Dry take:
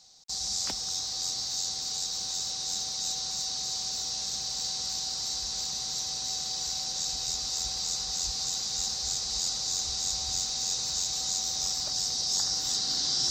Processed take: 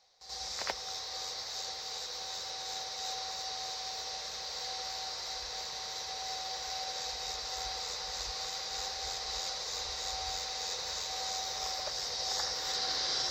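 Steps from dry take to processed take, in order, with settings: graphic EQ 125/250/500/1000/2000/8000 Hz -5/-10/+12/+5/+11/-11 dB; on a send: reverse echo 83 ms -5.5 dB; on the sum: upward expansion 1.5:1, over -44 dBFS; trim -3 dB

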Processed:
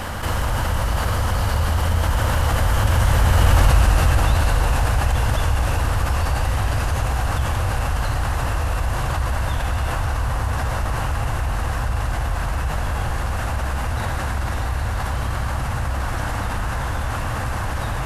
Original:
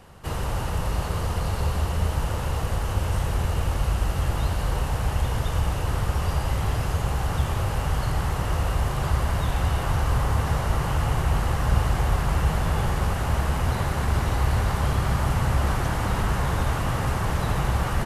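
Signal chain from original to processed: Doppler pass-by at 3.62 s, 14 m/s, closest 2.7 m; graphic EQ with 31 bands 160 Hz -11 dB, 400 Hz -9 dB, 1.6 kHz +4 dB; level flattener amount 70%; trim +9 dB

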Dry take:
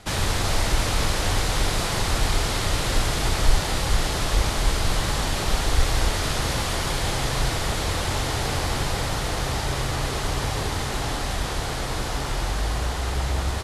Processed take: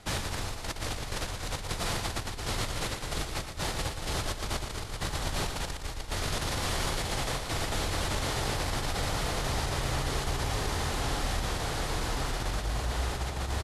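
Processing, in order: compressor with a negative ratio -25 dBFS, ratio -0.5; on a send: feedback delay 117 ms, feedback 53%, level -7.5 dB; on the sum: trim -7.5 dB

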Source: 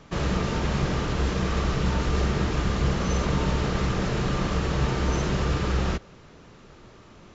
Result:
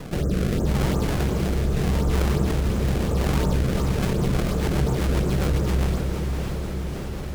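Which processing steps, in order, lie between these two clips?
Bessel low-pass 810 Hz, order 6; hum notches 60/120/180/240/300 Hz; decimation with a swept rate 27×, swing 160% 2.8 Hz; rotary cabinet horn 0.8 Hz, later 7.5 Hz, at 3.39 s; on a send: echo that smears into a reverb 568 ms, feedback 50%, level -9 dB; on the sum: level flattener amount 50%; trim +2.5 dB

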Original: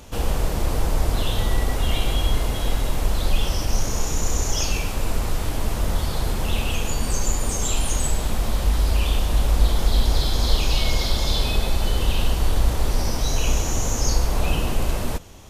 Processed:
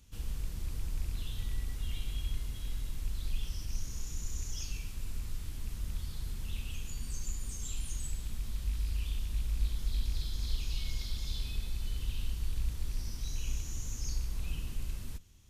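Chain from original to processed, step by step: rattle on loud lows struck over -17 dBFS, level -24 dBFS; amplifier tone stack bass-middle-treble 6-0-2; trim -2 dB

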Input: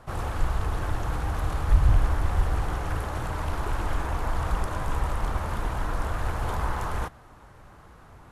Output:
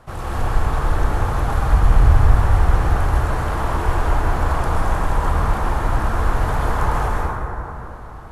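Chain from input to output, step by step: plate-style reverb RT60 3.1 s, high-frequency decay 0.3×, pre-delay 115 ms, DRR -5.5 dB; trim +2 dB

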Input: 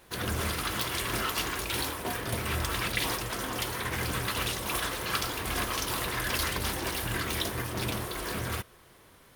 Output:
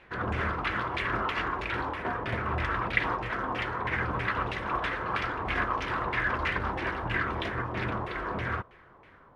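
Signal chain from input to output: LFO low-pass saw down 3.1 Hz 880–2500 Hz

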